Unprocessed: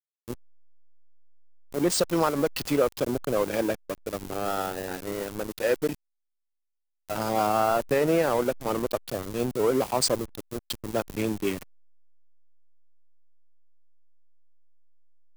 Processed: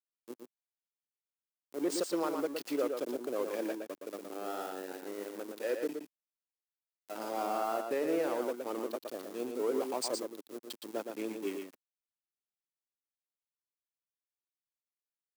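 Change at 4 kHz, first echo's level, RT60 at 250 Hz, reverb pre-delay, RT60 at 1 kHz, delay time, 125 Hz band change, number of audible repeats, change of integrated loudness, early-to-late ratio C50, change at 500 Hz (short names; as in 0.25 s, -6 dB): -11.0 dB, -5.5 dB, none, none, none, 0.117 s, under -20 dB, 1, -9.0 dB, none, -8.5 dB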